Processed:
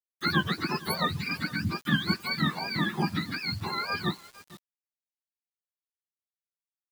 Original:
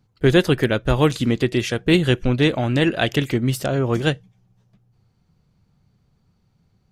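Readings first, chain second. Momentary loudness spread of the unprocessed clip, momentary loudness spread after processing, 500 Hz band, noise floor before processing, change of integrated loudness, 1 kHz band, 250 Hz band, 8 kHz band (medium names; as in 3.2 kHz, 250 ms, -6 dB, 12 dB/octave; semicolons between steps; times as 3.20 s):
5 LU, 5 LU, -19.5 dB, -65 dBFS, -9.5 dB, -3.0 dB, -11.5 dB, -11.0 dB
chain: spectrum inverted on a logarithmic axis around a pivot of 750 Hz; delay 458 ms -20.5 dB; bit crusher 7-bit; trim -8 dB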